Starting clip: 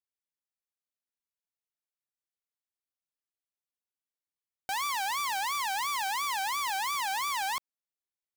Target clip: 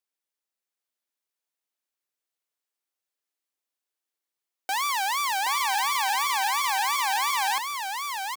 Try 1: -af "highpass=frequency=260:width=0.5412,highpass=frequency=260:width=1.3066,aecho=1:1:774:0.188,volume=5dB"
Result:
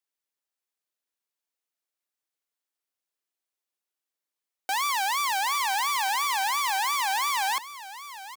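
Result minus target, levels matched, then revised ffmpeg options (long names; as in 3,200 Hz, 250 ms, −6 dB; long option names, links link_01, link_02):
echo-to-direct −9.5 dB
-af "highpass=frequency=260:width=0.5412,highpass=frequency=260:width=1.3066,aecho=1:1:774:0.562,volume=5dB"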